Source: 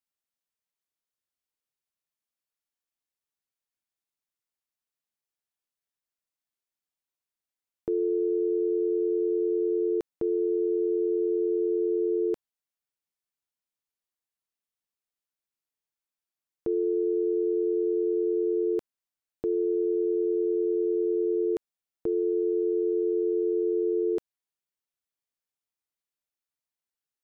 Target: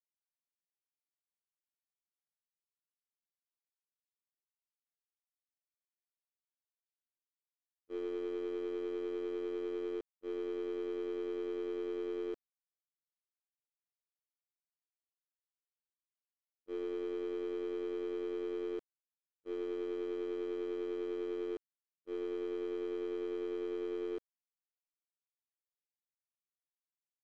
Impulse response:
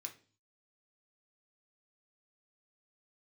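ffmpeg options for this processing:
-af "aeval=exprs='0.106*(cos(1*acos(clip(val(0)/0.106,-1,1)))-cos(1*PI/2))+0.00211*(cos(6*acos(clip(val(0)/0.106,-1,1)))-cos(6*PI/2))+0.00133*(cos(7*acos(clip(val(0)/0.106,-1,1)))-cos(7*PI/2))+0.0075*(cos(8*acos(clip(val(0)/0.106,-1,1)))-cos(8*PI/2))':channel_layout=same,adynamicsmooth=sensitivity=7.5:basefreq=630,agate=range=-60dB:threshold=-23dB:ratio=16:detection=peak,volume=3dB"

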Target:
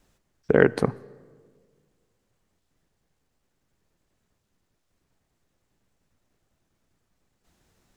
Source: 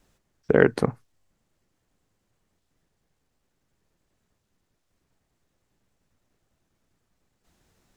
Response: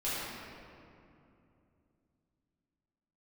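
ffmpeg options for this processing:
-filter_complex "[0:a]asplit=2[link_01][link_02];[1:a]atrim=start_sample=2205,asetrate=83790,aresample=44100,adelay=74[link_03];[link_02][link_03]afir=irnorm=-1:irlink=0,volume=-26dB[link_04];[link_01][link_04]amix=inputs=2:normalize=0"

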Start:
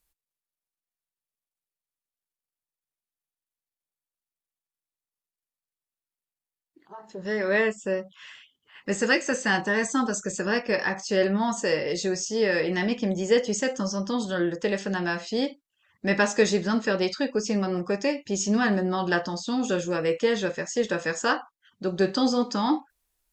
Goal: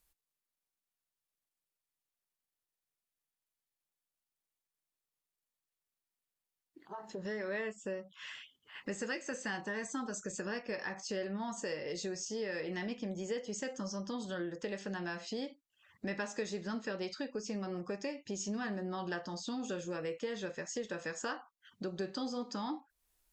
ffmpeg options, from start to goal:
ffmpeg -i in.wav -af "acompressor=threshold=-41dB:ratio=3" out.wav

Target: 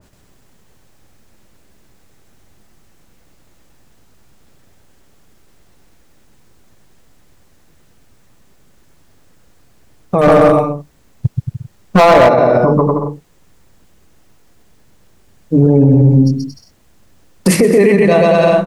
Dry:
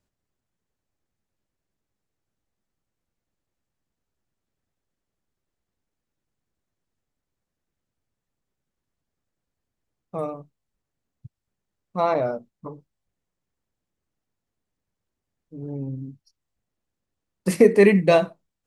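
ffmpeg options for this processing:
ffmpeg -i in.wav -filter_complex "[0:a]aecho=1:1:130|227.5|300.6|355.5|396.6:0.631|0.398|0.251|0.158|0.1,acompressor=threshold=-29dB:ratio=5,asettb=1/sr,asplit=3[link_01][link_02][link_03];[link_01]atrim=end=10.214[link_04];[link_02]atrim=start=10.21:end=12.29,asetpts=PTS-STARTPTS,afade=type=in:duration=0.004:curve=qsin,afade=type=out:start_time=2.076:duration=0.004:curve=qsin,volume=32dB,asoftclip=hard,volume=-32dB[link_05];[link_03]atrim=start=12.286[link_06];[link_04][link_05]acrossfade=duration=0.004:curve1=hsin:curve2=qsin[link_07];[link_07][link_06]acrossfade=duration=0.004:curve1=qsin:curve2=hsin,alimiter=level_in=29.5dB:limit=-1dB:release=50:level=0:latency=1,adynamicequalizer=threshold=0.0562:dfrequency=2000:dqfactor=0.7:tfrequency=2000:tqfactor=0.7:attack=5:release=100:ratio=0.375:range=2:mode=cutabove:tftype=highshelf,volume=-1dB" out.wav

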